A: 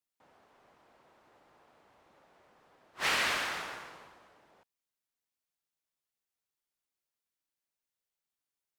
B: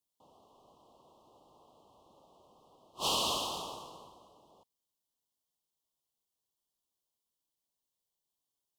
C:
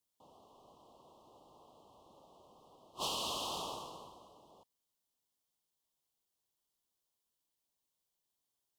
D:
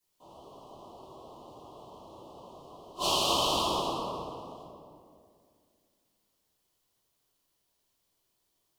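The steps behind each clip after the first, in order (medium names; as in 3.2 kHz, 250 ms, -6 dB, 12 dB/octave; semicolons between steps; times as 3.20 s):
elliptic band-stop 1.1–3 kHz, stop band 40 dB; trim +3 dB
compression 6:1, threshold -36 dBFS, peak gain reduction 8.5 dB; trim +1 dB
reverberation RT60 2.2 s, pre-delay 3 ms, DRR -11 dB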